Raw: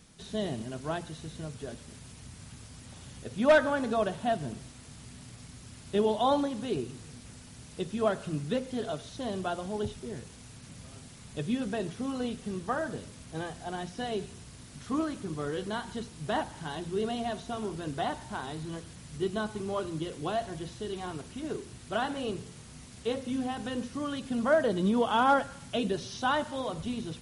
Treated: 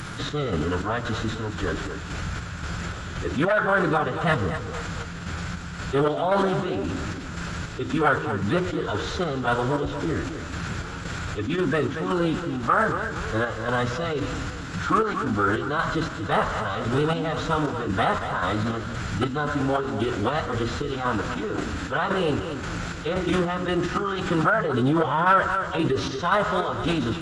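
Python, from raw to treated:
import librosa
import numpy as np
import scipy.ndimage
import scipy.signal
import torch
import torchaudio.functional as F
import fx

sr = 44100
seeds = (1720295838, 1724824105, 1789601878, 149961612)

p1 = fx.rider(x, sr, range_db=3, speed_s=2.0)
p2 = x + F.gain(torch.from_numpy(p1), -2.0).numpy()
p3 = fx.chopper(p2, sr, hz=1.9, depth_pct=65, duty_pct=55)
p4 = 10.0 ** (-16.5 / 20.0) * np.tanh(p3 / 10.0 ** (-16.5 / 20.0))
p5 = fx.peak_eq(p4, sr, hz=6000.0, db=-7.0, octaves=1.0)
p6 = fx.echo_feedback(p5, sr, ms=233, feedback_pct=34, wet_db=-16)
p7 = fx.pitch_keep_formants(p6, sr, semitones=-6.5)
p8 = fx.peak_eq(p7, sr, hz=1400.0, db=13.5, octaves=0.6)
p9 = fx.env_flatten(p8, sr, amount_pct=50)
y = F.gain(torch.from_numpy(p9), -2.0).numpy()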